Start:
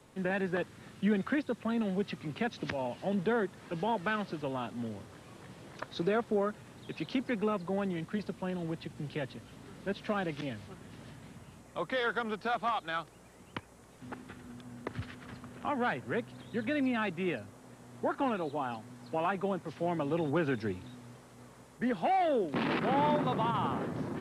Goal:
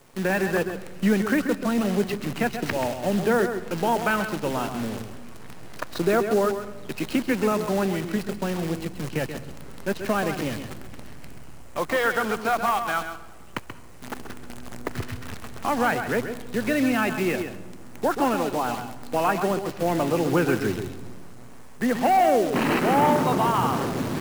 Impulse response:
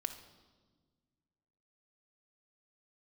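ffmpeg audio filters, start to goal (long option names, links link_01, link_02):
-filter_complex "[0:a]lowshelf=frequency=230:gain=-2.5,bandreject=frequency=3500:width=5,acrusher=bits=8:dc=4:mix=0:aa=0.000001,asplit=2[link_01][link_02];[1:a]atrim=start_sample=2205,lowshelf=frequency=130:gain=11,adelay=132[link_03];[link_02][link_03]afir=irnorm=-1:irlink=0,volume=-8dB[link_04];[link_01][link_04]amix=inputs=2:normalize=0,volume=9dB"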